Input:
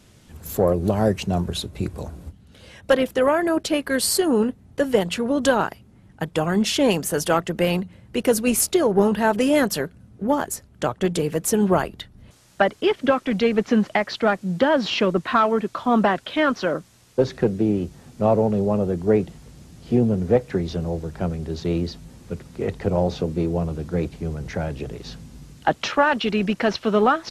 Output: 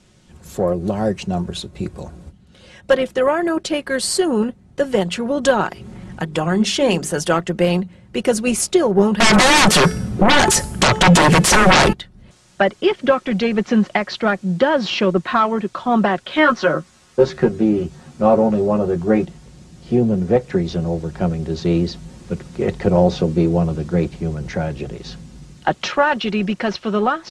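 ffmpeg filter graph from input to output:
-filter_complex "[0:a]asettb=1/sr,asplit=3[a][b][c];[a]atrim=end=5.664[d];[b]atrim=start=5.66:end=7.16,asetpts=PTS-STARTPTS,afade=t=in:d=0.004:c=qsin,afade=t=out:st=1.496:d=0.004:c=qsin,bandreject=f=50:t=h:w=6,bandreject=f=100:t=h:w=6,bandreject=f=150:t=h:w=6,bandreject=f=200:t=h:w=6,bandreject=f=250:t=h:w=6,bandreject=f=300:t=h:w=6,bandreject=f=350:t=h:w=6,bandreject=f=400:t=h:w=6,bandreject=f=450:t=h:w=6,acompressor=mode=upward:threshold=-23dB:ratio=2.5:attack=3.2:release=140:knee=2.83:detection=peak[e];[c]atrim=start=7.156[f];[d][e]acrossfade=d=0.004:c1=hsin:c2=qsin[g];[g][f]acrossfade=d=0.004:c1=qsin:c2=hsin,asettb=1/sr,asplit=3[h][i][j];[h]atrim=end=9.204[k];[i]atrim=start=9.2:end=11.93,asetpts=PTS-STARTPTS,afade=t=in:d=0.004:c=qsin,afade=t=out:st=2.726:d=0.004:c=qsin,bandreject=f=434.2:t=h:w=4,bandreject=f=868.4:t=h:w=4,bandreject=f=1.3026k:t=h:w=4,bandreject=f=1.7368k:t=h:w=4,bandreject=f=2.171k:t=h:w=4,bandreject=f=2.6052k:t=h:w=4,bandreject=f=3.0394k:t=h:w=4,bandreject=f=3.4736k:t=h:w=4,bandreject=f=3.9078k:t=h:w=4,bandreject=f=4.342k:t=h:w=4,bandreject=f=4.7762k:t=h:w=4,bandreject=f=5.2104k:t=h:w=4,bandreject=f=5.6446k:t=h:w=4,bandreject=f=6.0788k:t=h:w=4,bandreject=f=6.513k:t=h:w=4,bandreject=f=6.9472k:t=h:w=4,bandreject=f=7.3814k:t=h:w=4,bandreject=f=7.8156k:t=h:w=4,bandreject=f=8.2498k:t=h:w=4,bandreject=f=8.684k:t=h:w=4,bandreject=f=9.1182k:t=h:w=4,bandreject=f=9.5524k:t=h:w=4,bandreject=f=9.9866k:t=h:w=4,bandreject=f=10.4208k:t=h:w=4,bandreject=f=10.855k:t=h:w=4,bandreject=f=11.2892k:t=h:w=4,bandreject=f=11.7234k:t=h:w=4,bandreject=f=12.1576k:t=h:w=4,bandreject=f=12.5918k:t=h:w=4,bandreject=f=13.026k:t=h:w=4,bandreject=f=13.4602k:t=h:w=4,bandreject=f=13.8944k:t=h:w=4,bandreject=f=14.3286k:t=h:w=4,bandreject=f=14.7628k:t=h:w=4,acompressor=threshold=-27dB:ratio=1.5:attack=3.2:release=140:knee=1:detection=peak,aeval=exprs='0.282*sin(PI/2*7.94*val(0)/0.282)':c=same[l];[j]atrim=start=11.926[m];[k][l]acrossfade=d=0.004:c1=hsin:c2=qsin[n];[n][m]acrossfade=d=0.004:c1=qsin:c2=hsin,asettb=1/sr,asplit=3[o][p][q];[o]atrim=end=16.294[r];[p]atrim=start=16.29:end=19.25,asetpts=PTS-STARTPTS,afade=t=in:d=0.004:c=qsin,afade=t=out:st=2.956:d=0.004:c=qsin,equalizer=f=1.3k:t=o:w=0.98:g=4.5,asplit=2[s][t];[t]adelay=13,volume=-2.5dB[u];[s][u]amix=inputs=2:normalize=0,atrim=end_sample=130536[v];[q]atrim=start=19.246[w];[r][v]acrossfade=d=0.004:c1=hsin:c2=qsin[x];[x][w]acrossfade=d=0.004:c1=qsin:c2=hsin,lowpass=f=9.5k:w=0.5412,lowpass=f=9.5k:w=1.3066,aecho=1:1:5.5:0.36,dynaudnorm=f=390:g=9:m=11.5dB,volume=-1dB"

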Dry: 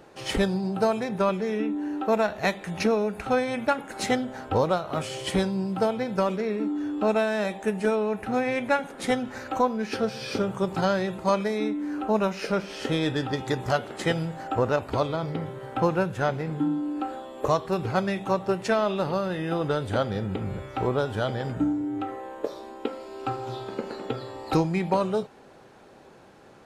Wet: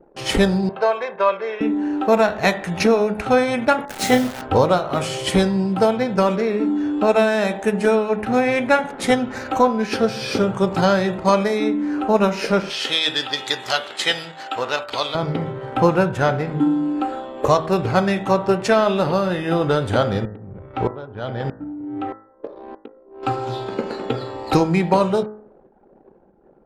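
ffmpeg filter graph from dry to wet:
-filter_complex "[0:a]asettb=1/sr,asplit=3[a][b][c];[a]atrim=end=0.694[d];[b]atrim=start=0.69:end=1.61,asetpts=PTS-STARTPTS,afade=t=in:d=0.004:c=qsin,afade=t=out:st=0.916:d=0.004:c=qsin,highpass=630,lowpass=2.9k,aecho=1:1:1.9:0.48,atrim=end_sample=40572[e];[c]atrim=start=1.606[f];[d][e]acrossfade=d=0.004:c1=hsin:c2=qsin[g];[g][f]acrossfade=d=0.004:c1=qsin:c2=hsin,asettb=1/sr,asplit=3[h][i][j];[h]atrim=end=3.854[k];[i]atrim=start=3.85:end=4.42,asetpts=PTS-STARTPTS,afade=t=in:d=0.004:c=qsin,afade=t=out:st=0.566:d=0.004:c=qsin,asplit=2[l][m];[m]adelay=32,volume=-6.5dB[n];[l][n]amix=inputs=2:normalize=0,atrim=end_sample=25137,aeval=exprs='sgn(val(0))*max(abs(val(0))-0.00891,0)':c=same,acrusher=bits=7:dc=4:mix=0:aa=0.000001[o];[j]atrim=start=4.416[p];[k][o]acrossfade=d=0.004:c1=hsin:c2=qsin[q];[q][p]acrossfade=d=0.004:c1=qsin:c2=hsin,asettb=1/sr,asplit=3[r][s][t];[r]atrim=end=12.704[u];[s]atrim=start=12.7:end=15.15,asetpts=PTS-STARTPTS,afade=t=in:d=0.004:c=qsin,afade=t=out:st=2.446:d=0.004:c=qsin,highpass=f=1.3k:p=1,equalizer=f=3.6k:w=1.2:g=9[v];[t]atrim=start=15.146[w];[u][v]acrossfade=d=0.004:c1=hsin:c2=qsin[x];[x][w]acrossfade=d=0.004:c1=qsin:c2=hsin,asettb=1/sr,asplit=3[y][z][aa];[y]atrim=end=20.254[ab];[z]atrim=start=20.25:end=23.23,asetpts=PTS-STARTPTS,afade=t=in:d=0.004:c=qsin,afade=t=out:st=2.976:d=0.004:c=qsin,lowpass=6.2k,highshelf=f=4.6k:g=-6,aeval=exprs='val(0)*pow(10,-20*if(lt(mod(-1.6*n/s,1),2*abs(-1.6)/1000),1-mod(-1.6*n/s,1)/(2*abs(-1.6)/1000),(mod(-1.6*n/s,1)-2*abs(-1.6)/1000)/(1-2*abs(-1.6)/1000))/20)':c=same[ac];[aa]atrim=start=23.226[ad];[ab][ac]acrossfade=d=0.004:c1=hsin:c2=qsin[ae];[ae][ad]acrossfade=d=0.004:c1=qsin:c2=hsin,anlmdn=0.0398,bandreject=f=53.13:t=h:w=4,bandreject=f=106.26:t=h:w=4,bandreject=f=159.39:t=h:w=4,bandreject=f=212.52:t=h:w=4,bandreject=f=265.65:t=h:w=4,bandreject=f=318.78:t=h:w=4,bandreject=f=371.91:t=h:w=4,bandreject=f=425.04:t=h:w=4,bandreject=f=478.17:t=h:w=4,bandreject=f=531.3:t=h:w=4,bandreject=f=584.43:t=h:w=4,bandreject=f=637.56:t=h:w=4,bandreject=f=690.69:t=h:w=4,bandreject=f=743.82:t=h:w=4,bandreject=f=796.95:t=h:w=4,bandreject=f=850.08:t=h:w=4,bandreject=f=903.21:t=h:w=4,bandreject=f=956.34:t=h:w=4,bandreject=f=1.00947k:t=h:w=4,bandreject=f=1.0626k:t=h:w=4,bandreject=f=1.11573k:t=h:w=4,bandreject=f=1.16886k:t=h:w=4,bandreject=f=1.22199k:t=h:w=4,bandreject=f=1.27512k:t=h:w=4,bandreject=f=1.32825k:t=h:w=4,bandreject=f=1.38138k:t=h:w=4,bandreject=f=1.43451k:t=h:w=4,bandreject=f=1.48764k:t=h:w=4,bandreject=f=1.54077k:t=h:w=4,bandreject=f=1.5939k:t=h:w=4,bandreject=f=1.64703k:t=h:w=4,bandreject=f=1.70016k:t=h:w=4,bandreject=f=1.75329k:t=h:w=4,bandreject=f=1.80642k:t=h:w=4,bandreject=f=1.85955k:t=h:w=4,bandreject=f=1.91268k:t=h:w=4,bandreject=f=1.96581k:t=h:w=4,volume=8dB"

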